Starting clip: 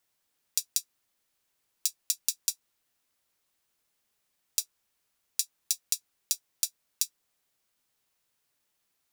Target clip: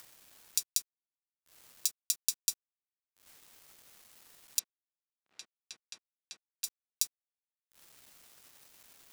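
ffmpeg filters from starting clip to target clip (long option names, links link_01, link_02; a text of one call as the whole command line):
ffmpeg -i in.wav -filter_complex "[0:a]acompressor=mode=upward:threshold=-35dB:ratio=2.5,acrusher=bits=7:mix=0:aa=0.000001,asettb=1/sr,asplit=3[link_01][link_02][link_03];[link_01]atrim=end=4.594[link_04];[link_02]atrim=start=4.59:end=6.64,asetpts=PTS-STARTPTS,afade=type=in:duration=0.004:curve=qsin,afade=type=out:start_time=2.046:duration=0.004:curve=qsin,highpass=140,lowpass=2400[link_05];[link_03]atrim=start=6.636[link_06];[link_04][link_05]acrossfade=duration=0.004:curve1=hsin:curve2=qsin[link_07];[link_07][link_06]acrossfade=duration=0.004:curve1=qsin:curve2=hsin,volume=-2dB" out.wav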